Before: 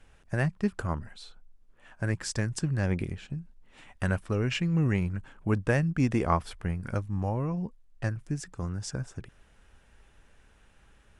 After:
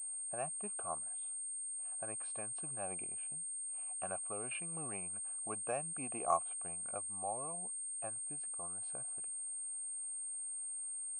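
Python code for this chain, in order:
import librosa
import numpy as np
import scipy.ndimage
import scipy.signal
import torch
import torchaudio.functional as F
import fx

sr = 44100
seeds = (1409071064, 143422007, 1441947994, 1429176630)

y = fx.freq_compress(x, sr, knee_hz=2800.0, ratio=1.5)
y = fx.vowel_filter(y, sr, vowel='a')
y = fx.pwm(y, sr, carrier_hz=8600.0)
y = F.gain(torch.from_numpy(y), 1.0).numpy()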